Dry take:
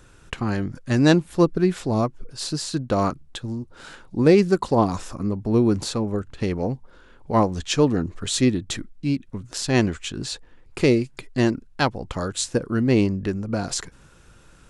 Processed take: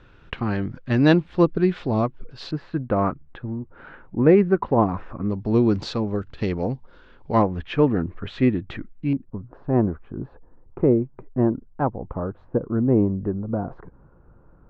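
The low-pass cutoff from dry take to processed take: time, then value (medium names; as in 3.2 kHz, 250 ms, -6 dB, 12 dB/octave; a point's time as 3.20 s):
low-pass 24 dB/octave
3.7 kHz
from 2.51 s 2.1 kHz
from 5.30 s 4.6 kHz
from 7.42 s 2.5 kHz
from 9.13 s 1.1 kHz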